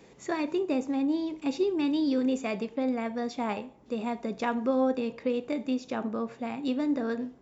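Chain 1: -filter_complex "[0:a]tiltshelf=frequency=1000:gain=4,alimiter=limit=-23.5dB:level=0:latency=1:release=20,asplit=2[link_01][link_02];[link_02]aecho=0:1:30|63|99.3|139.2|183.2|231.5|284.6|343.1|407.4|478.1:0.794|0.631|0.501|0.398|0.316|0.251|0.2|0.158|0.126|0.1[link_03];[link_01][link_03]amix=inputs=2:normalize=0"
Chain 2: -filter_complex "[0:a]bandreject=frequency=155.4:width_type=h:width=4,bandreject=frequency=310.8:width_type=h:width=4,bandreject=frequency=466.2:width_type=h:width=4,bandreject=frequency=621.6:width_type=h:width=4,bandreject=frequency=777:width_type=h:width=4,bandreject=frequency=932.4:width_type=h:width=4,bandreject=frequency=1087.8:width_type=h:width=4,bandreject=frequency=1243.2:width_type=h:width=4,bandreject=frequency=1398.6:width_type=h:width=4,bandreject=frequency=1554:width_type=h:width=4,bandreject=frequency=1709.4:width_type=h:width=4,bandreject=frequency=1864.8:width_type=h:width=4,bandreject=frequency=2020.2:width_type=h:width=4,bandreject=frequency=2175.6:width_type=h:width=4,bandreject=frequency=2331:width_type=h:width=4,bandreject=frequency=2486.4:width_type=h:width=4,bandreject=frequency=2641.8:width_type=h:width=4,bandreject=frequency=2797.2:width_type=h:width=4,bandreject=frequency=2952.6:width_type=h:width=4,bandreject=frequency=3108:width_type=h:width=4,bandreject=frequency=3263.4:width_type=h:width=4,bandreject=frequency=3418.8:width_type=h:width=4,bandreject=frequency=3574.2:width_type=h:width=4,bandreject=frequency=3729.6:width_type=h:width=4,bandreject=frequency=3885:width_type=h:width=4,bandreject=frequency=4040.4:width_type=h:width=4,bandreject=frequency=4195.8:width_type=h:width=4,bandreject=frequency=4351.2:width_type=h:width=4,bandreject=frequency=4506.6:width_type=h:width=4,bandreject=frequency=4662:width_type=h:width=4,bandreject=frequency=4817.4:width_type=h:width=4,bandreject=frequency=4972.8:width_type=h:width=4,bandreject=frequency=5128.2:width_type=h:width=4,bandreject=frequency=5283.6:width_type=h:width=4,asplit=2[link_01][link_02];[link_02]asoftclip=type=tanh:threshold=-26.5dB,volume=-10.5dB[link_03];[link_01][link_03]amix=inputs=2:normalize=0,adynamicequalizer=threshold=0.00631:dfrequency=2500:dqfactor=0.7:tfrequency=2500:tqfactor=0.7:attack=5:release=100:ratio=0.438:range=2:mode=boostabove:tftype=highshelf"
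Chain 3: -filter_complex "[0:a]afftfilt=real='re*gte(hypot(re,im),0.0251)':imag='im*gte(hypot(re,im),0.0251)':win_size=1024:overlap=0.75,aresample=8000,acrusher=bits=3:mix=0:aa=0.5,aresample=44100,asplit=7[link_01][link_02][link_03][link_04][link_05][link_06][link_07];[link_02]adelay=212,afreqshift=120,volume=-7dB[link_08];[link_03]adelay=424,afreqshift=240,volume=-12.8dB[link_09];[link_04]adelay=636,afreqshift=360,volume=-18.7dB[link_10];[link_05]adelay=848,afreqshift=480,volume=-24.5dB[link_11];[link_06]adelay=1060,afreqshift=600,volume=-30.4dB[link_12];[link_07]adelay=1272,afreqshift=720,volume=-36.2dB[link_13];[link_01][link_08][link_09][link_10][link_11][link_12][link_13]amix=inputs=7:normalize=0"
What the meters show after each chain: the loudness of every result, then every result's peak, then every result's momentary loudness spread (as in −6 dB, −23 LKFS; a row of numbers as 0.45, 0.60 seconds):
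−27.0, −28.5, −30.5 LKFS; −14.0, −14.5, −13.0 dBFS; 5, 6, 12 LU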